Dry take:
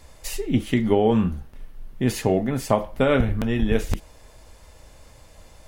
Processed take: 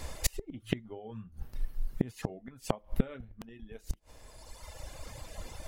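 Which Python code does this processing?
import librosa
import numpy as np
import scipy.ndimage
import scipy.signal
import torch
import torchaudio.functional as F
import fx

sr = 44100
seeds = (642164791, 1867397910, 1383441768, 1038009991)

y = fx.dereverb_blind(x, sr, rt60_s=1.7)
y = fx.peak_eq(y, sr, hz=110.0, db=11.0, octaves=0.2, at=(0.62, 2.1), fade=0.02)
y = fx.gate_flip(y, sr, shuts_db=-20.0, range_db=-32)
y = y * 10.0 ** (7.5 / 20.0)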